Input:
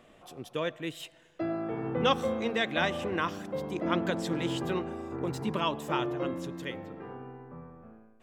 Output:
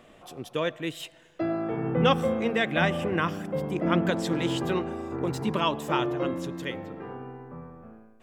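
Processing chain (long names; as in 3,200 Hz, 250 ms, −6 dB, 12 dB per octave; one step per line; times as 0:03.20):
0:01.76–0:04.09: thirty-one-band graphic EQ 160 Hz +8 dB, 1,000 Hz −3 dB, 4,000 Hz −9 dB, 6,300 Hz −6 dB
level +4 dB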